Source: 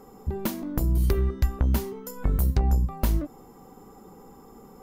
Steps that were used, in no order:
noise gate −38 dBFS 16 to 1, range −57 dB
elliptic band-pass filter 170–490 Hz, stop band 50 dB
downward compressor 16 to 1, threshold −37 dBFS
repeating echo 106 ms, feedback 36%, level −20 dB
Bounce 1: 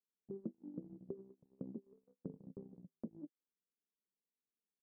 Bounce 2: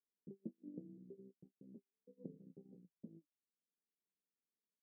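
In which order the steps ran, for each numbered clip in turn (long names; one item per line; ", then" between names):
elliptic band-pass filter, then downward compressor, then repeating echo, then noise gate
repeating echo, then downward compressor, then noise gate, then elliptic band-pass filter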